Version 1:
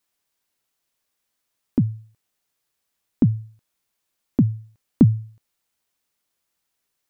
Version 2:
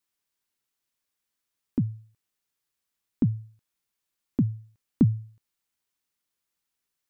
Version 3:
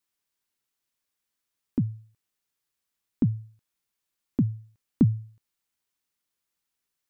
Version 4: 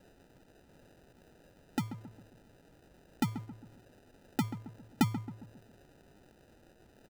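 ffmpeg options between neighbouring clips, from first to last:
-af "equalizer=f=640:t=o:w=0.78:g=-4.5,volume=0.501"
-af anull
-filter_complex "[0:a]aemphasis=mode=production:type=riaa,acrusher=samples=40:mix=1:aa=0.000001,asplit=2[s0][s1];[s1]adelay=135,lowpass=f=1100:p=1,volume=0.299,asplit=2[s2][s3];[s3]adelay=135,lowpass=f=1100:p=1,volume=0.48,asplit=2[s4][s5];[s5]adelay=135,lowpass=f=1100:p=1,volume=0.48,asplit=2[s6][s7];[s7]adelay=135,lowpass=f=1100:p=1,volume=0.48,asplit=2[s8][s9];[s9]adelay=135,lowpass=f=1100:p=1,volume=0.48[s10];[s0][s2][s4][s6][s8][s10]amix=inputs=6:normalize=0"

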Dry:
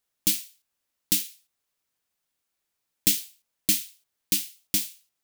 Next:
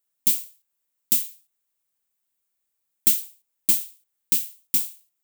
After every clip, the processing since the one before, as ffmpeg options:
-af "aexciter=amount=2.5:drive=3.7:freq=7200,volume=0.562"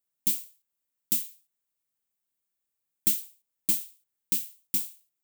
-af "equalizer=f=160:w=0.52:g=5,volume=0.501"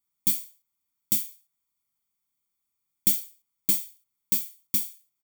-af "aecho=1:1:0.9:0.84"

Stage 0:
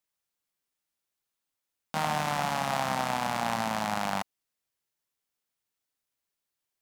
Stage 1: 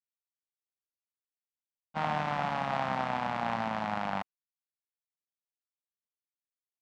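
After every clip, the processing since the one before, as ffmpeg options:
-af "agate=range=0.0224:threshold=0.0398:ratio=3:detection=peak,lowpass=2800,volume=0.841"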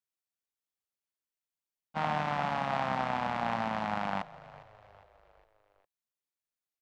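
-filter_complex "[0:a]asplit=5[s0][s1][s2][s3][s4];[s1]adelay=407,afreqshift=-48,volume=0.112[s5];[s2]adelay=814,afreqshift=-96,volume=0.0575[s6];[s3]adelay=1221,afreqshift=-144,volume=0.0292[s7];[s4]adelay=1628,afreqshift=-192,volume=0.015[s8];[s0][s5][s6][s7][s8]amix=inputs=5:normalize=0"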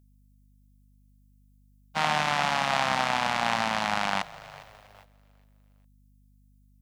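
-af "agate=range=0.282:threshold=0.00158:ratio=16:detection=peak,aeval=exprs='val(0)+0.001*(sin(2*PI*50*n/s)+sin(2*PI*2*50*n/s)/2+sin(2*PI*3*50*n/s)/3+sin(2*PI*4*50*n/s)/4+sin(2*PI*5*50*n/s)/5)':c=same,crystalizer=i=9:c=0,volume=1.12"

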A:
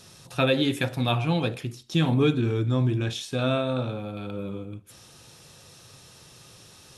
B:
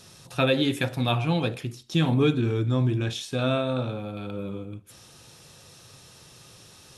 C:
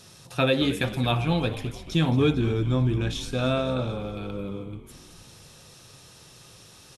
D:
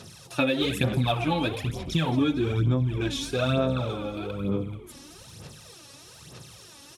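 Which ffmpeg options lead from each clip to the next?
-af anull
-filter_complex "[0:a]asplit=7[s0][s1][s2][s3][s4][s5][s6];[s1]adelay=222,afreqshift=-68,volume=0.2[s7];[s2]adelay=444,afreqshift=-136,volume=0.116[s8];[s3]adelay=666,afreqshift=-204,volume=0.0668[s9];[s4]adelay=888,afreqshift=-272,volume=0.0389[s10];[s5]adelay=1110,afreqshift=-340,volume=0.0226[s11];[s6]adelay=1332,afreqshift=-408,volume=0.013[s12];[s0][s7][s8][s9][s10][s11][s12]amix=inputs=7:normalize=0"
-af "aphaser=in_gain=1:out_gain=1:delay=3.6:decay=0.65:speed=1.1:type=sinusoidal,acompressor=threshold=0.1:ratio=6,highpass=64"

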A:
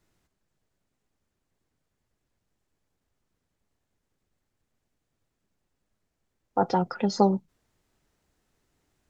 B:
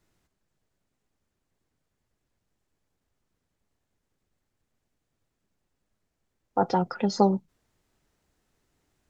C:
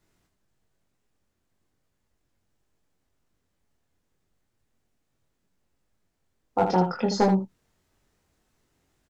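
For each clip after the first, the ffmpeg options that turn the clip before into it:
-af anull
-filter_complex "[0:a]asoftclip=type=hard:threshold=0.211,asplit=2[s0][s1];[s1]aecho=0:1:22|79:0.668|0.447[s2];[s0][s2]amix=inputs=2:normalize=0"

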